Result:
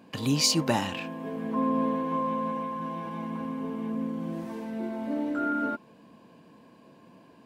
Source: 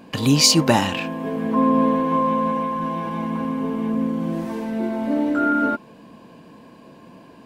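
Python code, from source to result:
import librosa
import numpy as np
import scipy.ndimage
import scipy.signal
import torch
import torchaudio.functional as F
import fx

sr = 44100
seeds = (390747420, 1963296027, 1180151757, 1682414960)

y = scipy.signal.sosfilt(scipy.signal.butter(2, 65.0, 'highpass', fs=sr, output='sos'), x)
y = y * librosa.db_to_amplitude(-9.0)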